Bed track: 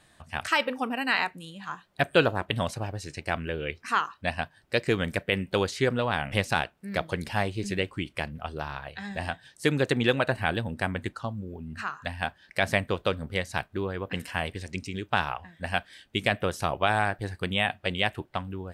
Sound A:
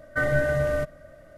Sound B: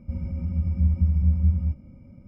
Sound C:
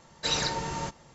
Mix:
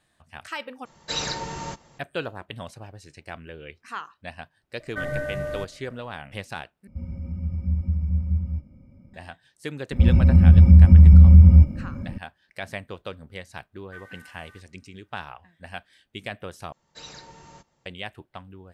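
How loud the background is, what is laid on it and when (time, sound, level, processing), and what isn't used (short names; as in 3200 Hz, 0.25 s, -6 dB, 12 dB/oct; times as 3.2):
bed track -9 dB
0.85 replace with C -0.5 dB
4.8 add A -6 dB
6.87 replace with B -3.5 dB
9.91 add B -2 dB + maximiser +16.5 dB
13.76 add A -18 dB + steep high-pass 800 Hz 96 dB/oct
16.72 replace with C -15 dB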